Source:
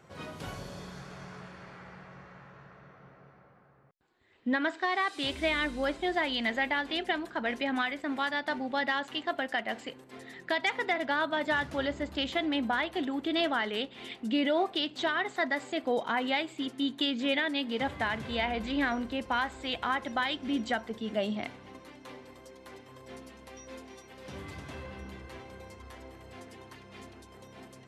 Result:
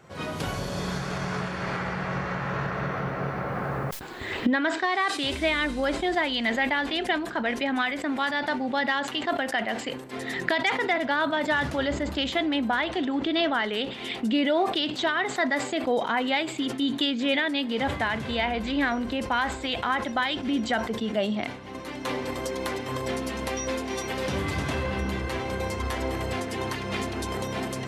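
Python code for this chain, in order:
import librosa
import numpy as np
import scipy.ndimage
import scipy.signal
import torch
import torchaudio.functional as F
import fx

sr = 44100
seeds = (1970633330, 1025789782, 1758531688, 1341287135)

y = fx.recorder_agc(x, sr, target_db=-24.5, rise_db_per_s=22.0, max_gain_db=30)
y = fx.lowpass(y, sr, hz=fx.line((12.79, 8700.0), (13.53, 5200.0)), slope=24, at=(12.79, 13.53), fade=0.02)
y = fx.sustainer(y, sr, db_per_s=81.0)
y = F.gain(torch.from_numpy(y), 4.0).numpy()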